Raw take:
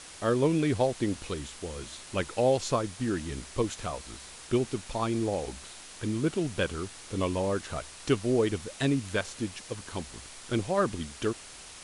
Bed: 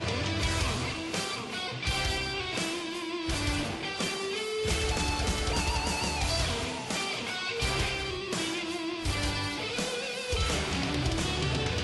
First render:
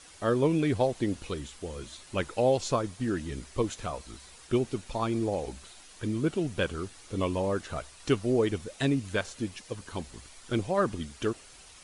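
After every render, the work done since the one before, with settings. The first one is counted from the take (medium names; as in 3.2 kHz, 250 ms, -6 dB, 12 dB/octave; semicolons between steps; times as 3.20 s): noise reduction 8 dB, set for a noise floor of -47 dBFS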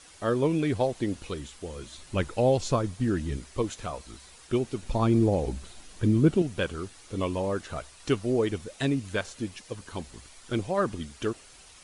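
1.94–3.37 s: bass shelf 200 Hz +8.5 dB; 4.82–6.42 s: bass shelf 390 Hz +11 dB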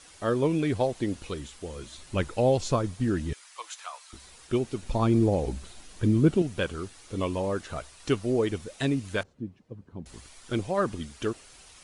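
3.33–4.13 s: high-pass 890 Hz 24 dB/octave; 9.23–10.06 s: band-pass filter 160 Hz, Q 1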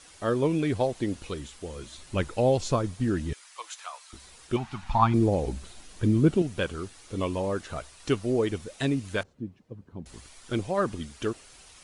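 4.56–5.14 s: FFT filter 200 Hz 0 dB, 490 Hz -19 dB, 820 Hz +12 dB, 4 kHz 0 dB, 9.4 kHz -9 dB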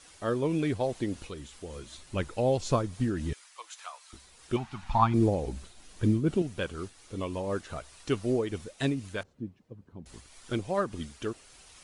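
random flutter of the level, depth 65%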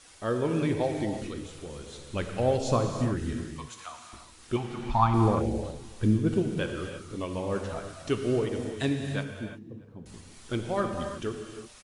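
echo from a far wall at 110 m, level -29 dB; gated-style reverb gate 370 ms flat, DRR 3.5 dB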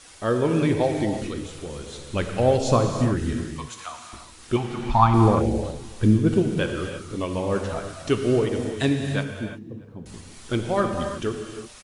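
trim +6 dB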